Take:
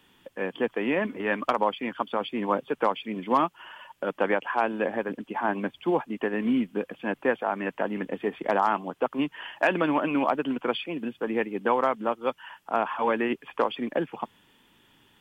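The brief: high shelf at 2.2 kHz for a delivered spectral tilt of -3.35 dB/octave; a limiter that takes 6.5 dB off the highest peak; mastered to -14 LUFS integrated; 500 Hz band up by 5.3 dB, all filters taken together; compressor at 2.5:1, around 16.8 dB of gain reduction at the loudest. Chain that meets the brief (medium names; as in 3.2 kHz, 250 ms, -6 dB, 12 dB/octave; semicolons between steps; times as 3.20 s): peaking EQ 500 Hz +6 dB; treble shelf 2.2 kHz +3.5 dB; compression 2.5:1, threshold -42 dBFS; trim +27 dB; peak limiter -1 dBFS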